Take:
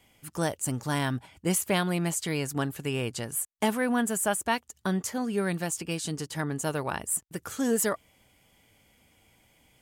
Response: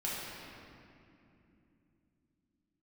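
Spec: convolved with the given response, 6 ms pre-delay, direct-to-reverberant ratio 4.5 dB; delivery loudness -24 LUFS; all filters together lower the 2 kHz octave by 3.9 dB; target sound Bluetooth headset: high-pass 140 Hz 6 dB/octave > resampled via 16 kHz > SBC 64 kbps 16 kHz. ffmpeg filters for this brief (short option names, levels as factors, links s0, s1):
-filter_complex "[0:a]equalizer=f=2000:t=o:g=-5,asplit=2[s0][s1];[1:a]atrim=start_sample=2205,adelay=6[s2];[s1][s2]afir=irnorm=-1:irlink=0,volume=0.335[s3];[s0][s3]amix=inputs=2:normalize=0,highpass=f=140:p=1,aresample=16000,aresample=44100,volume=2.11" -ar 16000 -c:a sbc -b:a 64k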